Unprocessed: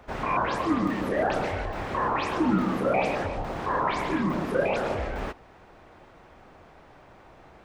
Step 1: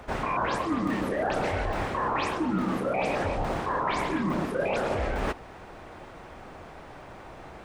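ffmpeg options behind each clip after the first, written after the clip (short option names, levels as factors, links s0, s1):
-af "equalizer=f=9000:w=1.7:g=4.5,areverse,acompressor=threshold=0.0251:ratio=6,areverse,volume=2.24"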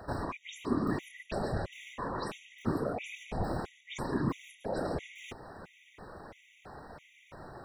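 -filter_complex "[0:a]acrossover=split=470|3000[s0][s1][s2];[s1]acompressor=threshold=0.0178:ratio=6[s3];[s0][s3][s2]amix=inputs=3:normalize=0,afftfilt=real='hypot(re,im)*cos(2*PI*random(0))':imag='hypot(re,im)*sin(2*PI*random(1))':win_size=512:overlap=0.75,afftfilt=real='re*gt(sin(2*PI*1.5*pts/sr)*(1-2*mod(floor(b*sr/1024/1900),2)),0)':imag='im*gt(sin(2*PI*1.5*pts/sr)*(1-2*mod(floor(b*sr/1024/1900),2)),0)':win_size=1024:overlap=0.75,volume=1.5"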